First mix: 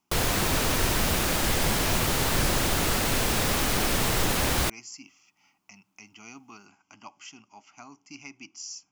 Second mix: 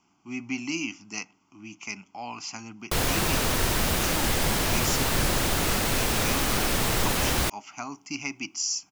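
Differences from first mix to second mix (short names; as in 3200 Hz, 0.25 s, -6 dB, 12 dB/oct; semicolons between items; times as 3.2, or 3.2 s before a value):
speech +11.0 dB; background: entry +2.80 s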